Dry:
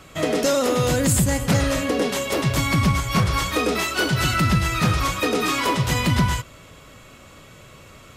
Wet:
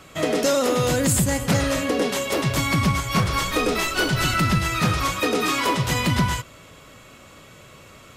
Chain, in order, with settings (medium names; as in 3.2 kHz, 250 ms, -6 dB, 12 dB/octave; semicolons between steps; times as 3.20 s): 3.18–4.60 s: added noise brown -31 dBFS; bass shelf 87 Hz -6.5 dB